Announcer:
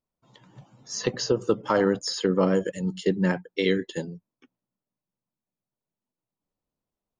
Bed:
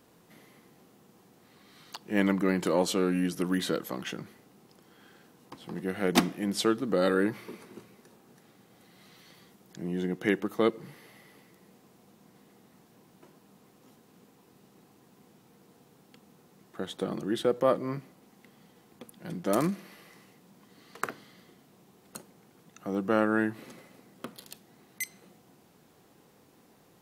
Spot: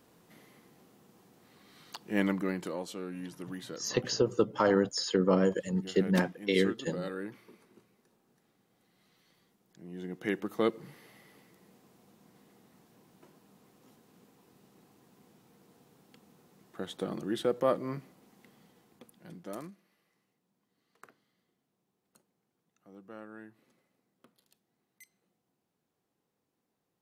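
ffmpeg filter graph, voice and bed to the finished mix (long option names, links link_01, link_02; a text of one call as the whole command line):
ffmpeg -i stem1.wav -i stem2.wav -filter_complex "[0:a]adelay=2900,volume=-3.5dB[link_01];[1:a]volume=8dB,afade=type=out:start_time=2.11:duration=0.7:silence=0.281838,afade=type=in:start_time=9.87:duration=0.71:silence=0.316228,afade=type=out:start_time=18.48:duration=1.27:silence=0.112202[link_02];[link_01][link_02]amix=inputs=2:normalize=0" out.wav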